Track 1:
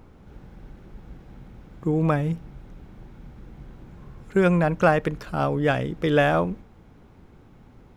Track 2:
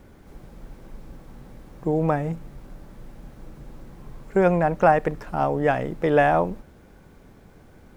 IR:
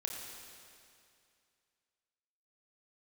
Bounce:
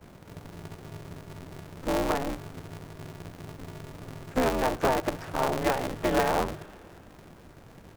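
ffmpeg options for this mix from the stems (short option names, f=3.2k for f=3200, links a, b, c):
-filter_complex "[0:a]volume=-12.5dB,asplit=2[a][b];[b]volume=-7dB[c];[1:a]volume=-1,adelay=9.9,volume=-1.5dB[d];[2:a]atrim=start_sample=2205[e];[c][e]afir=irnorm=-1:irlink=0[f];[a][d][f]amix=inputs=3:normalize=0,acrossover=split=110|380|890[g][h][i][j];[g]acompressor=threshold=-40dB:ratio=4[k];[h]acompressor=threshold=-37dB:ratio=4[l];[i]acompressor=threshold=-24dB:ratio=4[m];[j]acompressor=threshold=-36dB:ratio=4[n];[k][l][m][n]amix=inputs=4:normalize=0,aeval=exprs='val(0)*sgn(sin(2*PI*130*n/s))':c=same"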